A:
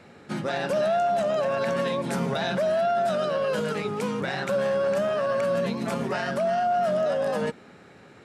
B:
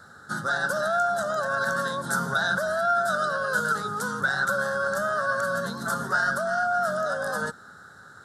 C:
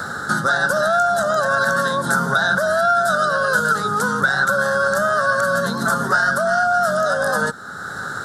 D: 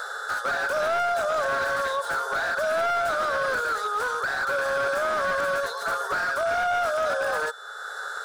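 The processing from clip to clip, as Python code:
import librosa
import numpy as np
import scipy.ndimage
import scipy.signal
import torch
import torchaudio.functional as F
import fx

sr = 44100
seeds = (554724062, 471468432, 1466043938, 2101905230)

y1 = fx.curve_eq(x, sr, hz=(100.0, 340.0, 1000.0, 1500.0, 2400.0, 3600.0, 12000.0), db=(0, -10, -1, 15, -28, 1, 11))
y2 = fx.band_squash(y1, sr, depth_pct=70)
y2 = F.gain(torch.from_numpy(y2), 7.5).numpy()
y3 = y2 + 10.0 ** (-43.0 / 20.0) * np.sin(2.0 * np.pi * 3500.0 * np.arange(len(y2)) / sr)
y3 = fx.brickwall_highpass(y3, sr, low_hz=400.0)
y3 = fx.slew_limit(y3, sr, full_power_hz=170.0)
y3 = F.gain(torch.from_numpy(y3), -5.5).numpy()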